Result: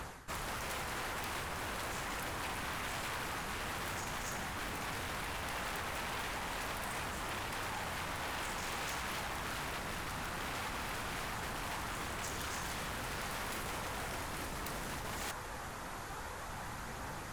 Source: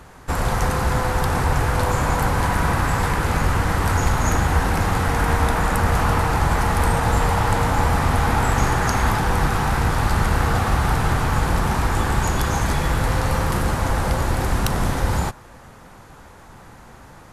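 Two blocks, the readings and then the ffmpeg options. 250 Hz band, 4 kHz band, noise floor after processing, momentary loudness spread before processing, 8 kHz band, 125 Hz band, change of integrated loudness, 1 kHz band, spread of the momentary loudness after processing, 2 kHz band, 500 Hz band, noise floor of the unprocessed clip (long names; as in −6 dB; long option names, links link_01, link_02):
−21.5 dB, −10.5 dB, −44 dBFS, 3 LU, −13.0 dB, −26.5 dB, −19.0 dB, −18.5 dB, 5 LU, −14.5 dB, −19.0 dB, −44 dBFS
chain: -af "aphaser=in_gain=1:out_gain=1:delay=3.2:decay=0.21:speed=0.41:type=triangular,areverse,acompressor=threshold=-32dB:ratio=8,areverse,aeval=exprs='0.0168*(abs(mod(val(0)/0.0168+3,4)-2)-1)':channel_layout=same,tiltshelf=frequency=650:gain=-3.5"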